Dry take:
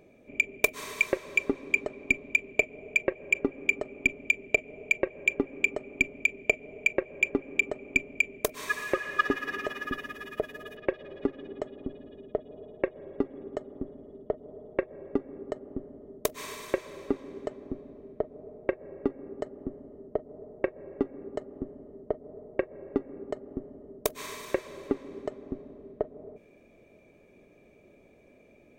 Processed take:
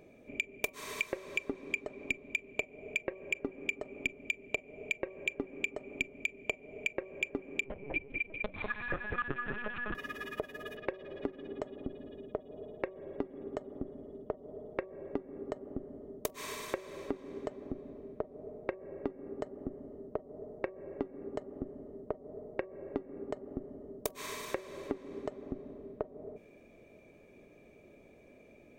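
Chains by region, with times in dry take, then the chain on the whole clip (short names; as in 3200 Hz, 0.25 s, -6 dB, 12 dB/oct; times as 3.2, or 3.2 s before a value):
7.64–9.95 air absorption 99 m + echo with dull and thin repeats by turns 0.198 s, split 2300 Hz, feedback 54%, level -5.5 dB + LPC vocoder at 8 kHz pitch kept
whole clip: de-hum 189.7 Hz, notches 6; compressor 2.5:1, threshold -35 dBFS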